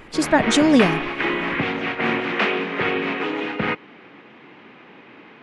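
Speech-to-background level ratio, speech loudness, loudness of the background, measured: 5.5 dB, −17.5 LKFS, −23.0 LKFS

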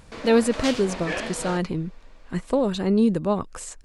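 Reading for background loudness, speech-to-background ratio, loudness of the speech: −32.5 LKFS, 8.5 dB, −24.0 LKFS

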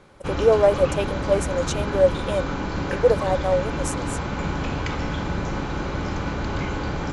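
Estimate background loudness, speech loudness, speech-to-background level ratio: −27.5 LKFS, −22.5 LKFS, 5.0 dB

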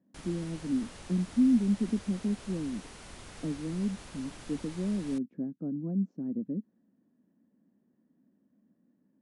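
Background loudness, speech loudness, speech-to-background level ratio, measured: −48.0 LKFS, −32.5 LKFS, 15.5 dB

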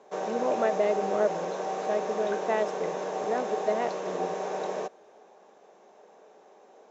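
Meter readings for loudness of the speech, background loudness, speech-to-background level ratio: −31.0 LKFS, −32.5 LKFS, 1.5 dB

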